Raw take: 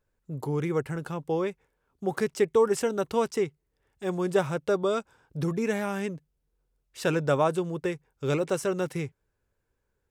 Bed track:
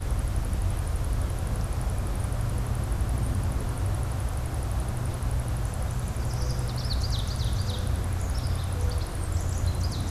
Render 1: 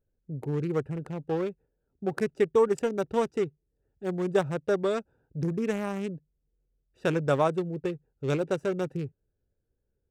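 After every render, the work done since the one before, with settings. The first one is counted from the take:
adaptive Wiener filter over 41 samples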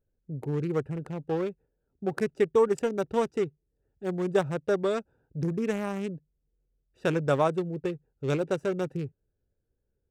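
no processing that can be heard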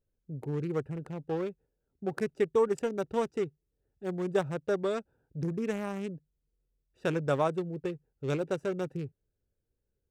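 level −3.5 dB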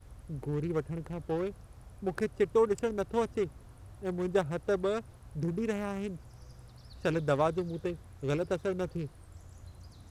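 mix in bed track −23 dB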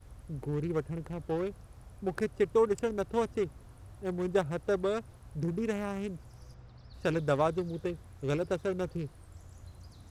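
0:06.54–0:06.94: high-frequency loss of the air 140 metres

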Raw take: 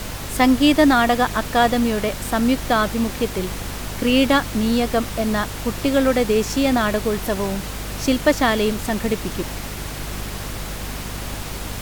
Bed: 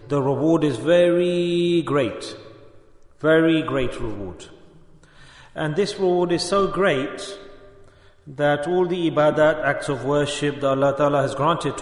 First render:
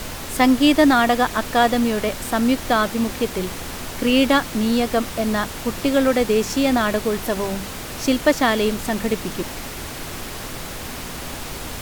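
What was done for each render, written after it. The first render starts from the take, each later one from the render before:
mains-hum notches 50/100/150/200 Hz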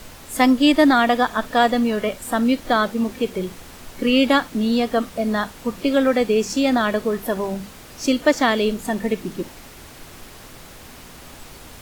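noise reduction from a noise print 10 dB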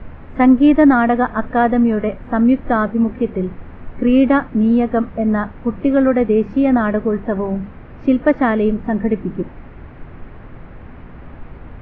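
low-pass filter 2,100 Hz 24 dB per octave
low-shelf EQ 270 Hz +11 dB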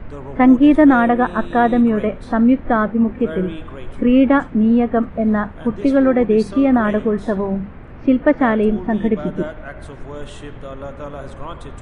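mix in bed −13 dB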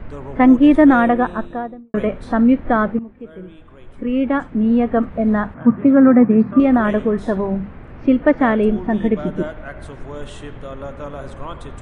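0:01.04–0:01.94: fade out and dull
0:02.99–0:04.89: fade in quadratic, from −17 dB
0:05.54–0:06.60: loudspeaker in its box 100–2,100 Hz, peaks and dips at 130 Hz +9 dB, 240 Hz +9 dB, 400 Hz −8 dB, 1,200 Hz +5 dB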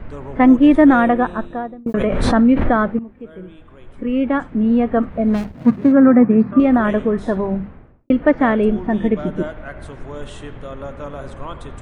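0:01.86–0:02.85: background raised ahead of every attack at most 23 dB per second
0:05.30–0:05.92: running median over 41 samples
0:07.53–0:08.10: fade out and dull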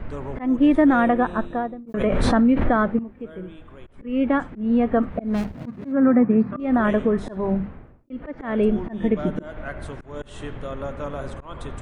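downward compressor 2 to 1, threshold −17 dBFS, peak gain reduction 6.5 dB
volume swells 203 ms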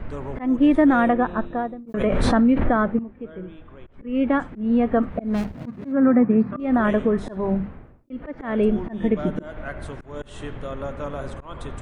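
0:01.13–0:01.59: high-frequency loss of the air 160 metres
0:02.58–0:04.15: high-frequency loss of the air 140 metres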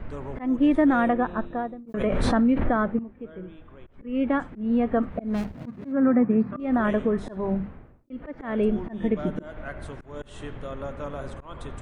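level −3.5 dB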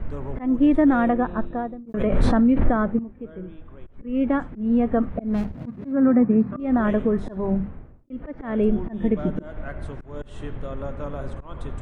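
spectral tilt −1.5 dB per octave

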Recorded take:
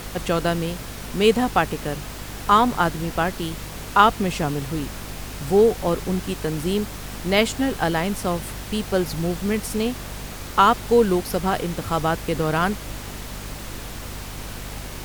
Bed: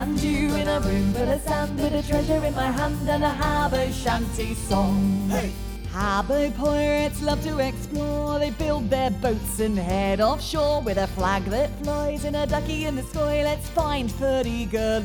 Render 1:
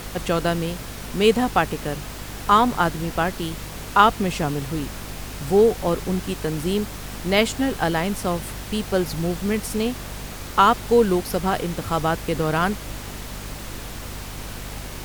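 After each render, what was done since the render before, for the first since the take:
no processing that can be heard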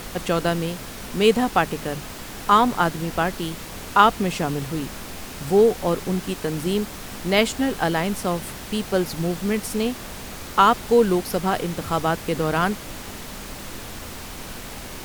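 mains-hum notches 50/100/150 Hz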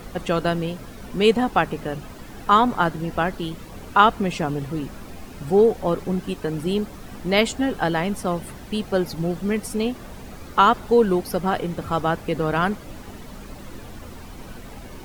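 broadband denoise 11 dB, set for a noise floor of −36 dBFS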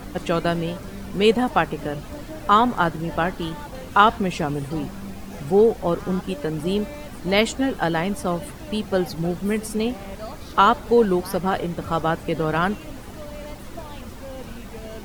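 mix in bed −15.5 dB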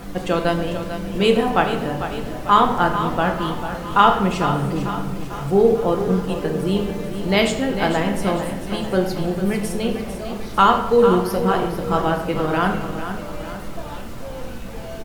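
repeating echo 447 ms, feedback 53%, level −10 dB
rectangular room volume 330 cubic metres, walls mixed, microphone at 0.77 metres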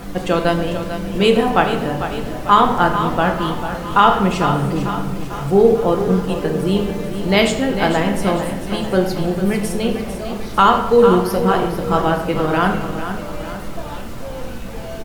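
level +3 dB
brickwall limiter −1 dBFS, peak gain reduction 2.5 dB

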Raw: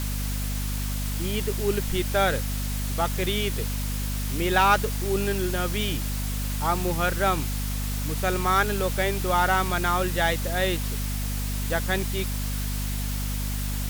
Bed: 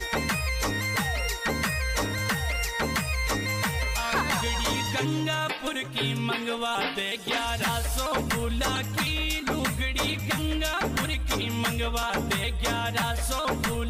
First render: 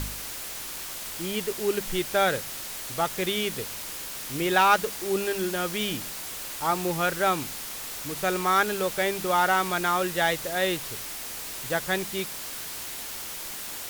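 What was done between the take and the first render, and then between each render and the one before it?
hum removal 50 Hz, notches 5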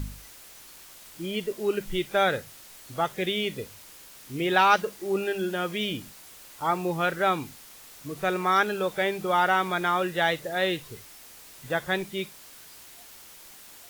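noise reduction from a noise print 12 dB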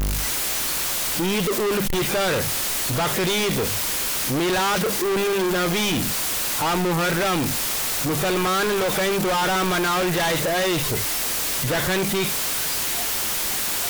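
power curve on the samples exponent 0.35
soft clipping −20 dBFS, distortion −11 dB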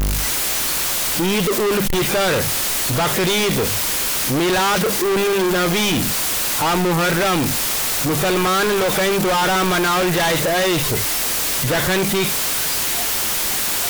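level +4 dB

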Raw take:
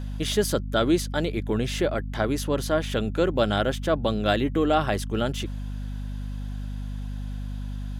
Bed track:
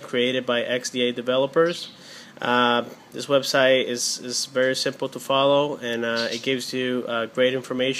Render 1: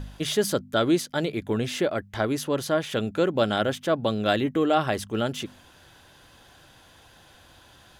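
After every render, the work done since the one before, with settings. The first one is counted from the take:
hum removal 50 Hz, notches 5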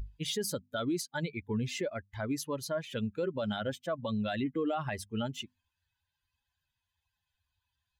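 spectral dynamics exaggerated over time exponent 2
brickwall limiter −25 dBFS, peak gain reduction 11.5 dB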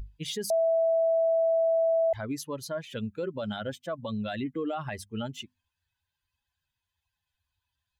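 0:00.50–0:02.13: beep over 657 Hz −21 dBFS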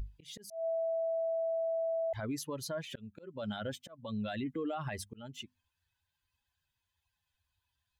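volume swells 454 ms
brickwall limiter −30 dBFS, peak gain reduction 9 dB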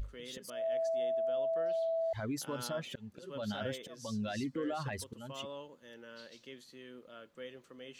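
mix in bed track −26.5 dB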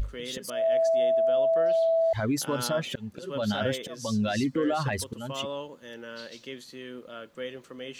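level +10 dB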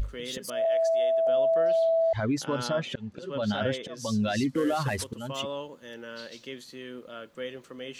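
0:00.65–0:01.27: high-pass filter 480 Hz
0:01.89–0:03.97: high-frequency loss of the air 70 metres
0:04.49–0:05.08: variable-slope delta modulation 64 kbit/s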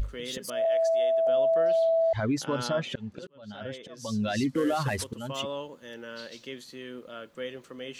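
0:03.27–0:04.47: fade in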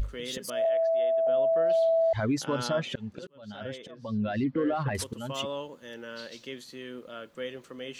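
0:00.69–0:01.70: high-frequency loss of the air 310 metres
0:03.91–0:04.95: high-frequency loss of the air 420 metres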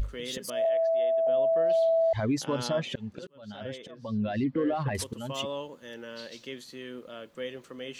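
dynamic equaliser 1,400 Hz, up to −7 dB, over −54 dBFS, Q 5.3

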